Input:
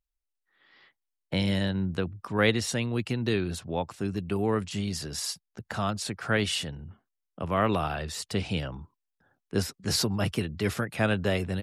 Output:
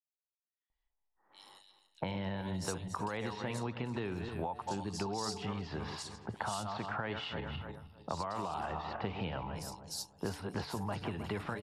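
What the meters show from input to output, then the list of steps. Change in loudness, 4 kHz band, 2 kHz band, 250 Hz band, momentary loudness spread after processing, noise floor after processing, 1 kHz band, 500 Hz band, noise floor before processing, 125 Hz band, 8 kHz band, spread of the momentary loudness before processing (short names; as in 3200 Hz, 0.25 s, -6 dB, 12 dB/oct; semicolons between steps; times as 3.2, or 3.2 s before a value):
-10.0 dB, -11.5 dB, -11.0 dB, -10.5 dB, 5 LU, under -85 dBFS, -4.0 dB, -10.5 dB, -84 dBFS, -10.5 dB, -10.5 dB, 8 LU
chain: regenerating reverse delay 0.156 s, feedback 51%, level -11 dB; de-hum 145.3 Hz, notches 5; low-pass opened by the level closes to 910 Hz, open at -25 dBFS; bell 900 Hz +14.5 dB 0.78 oct; limiter -16 dBFS, peak gain reduction 10.5 dB; compressor 10:1, threshold -35 dBFS, peak gain reduction 14 dB; bands offset in time highs, lows 0.7 s, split 3900 Hz; mismatched tape noise reduction decoder only; gain +1 dB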